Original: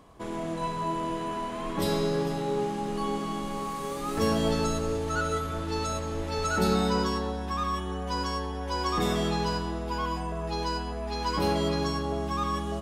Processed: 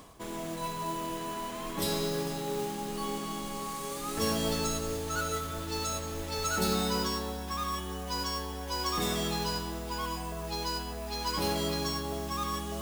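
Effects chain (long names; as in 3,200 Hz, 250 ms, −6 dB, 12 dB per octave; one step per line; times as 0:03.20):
high-shelf EQ 3,200 Hz +10.5 dB
reversed playback
upward compression, threshold −29 dBFS
reversed playback
noise that follows the level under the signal 14 dB
level −5.5 dB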